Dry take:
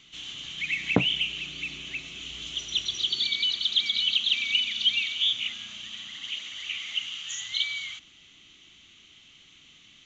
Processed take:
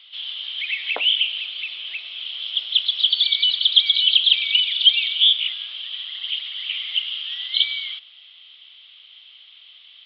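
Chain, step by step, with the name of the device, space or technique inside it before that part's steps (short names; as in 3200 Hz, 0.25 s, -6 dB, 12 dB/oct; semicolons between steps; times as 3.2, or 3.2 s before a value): musical greeting card (downsampling 11025 Hz; HPF 550 Hz 24 dB/oct; bell 3300 Hz +11 dB 0.43 oct)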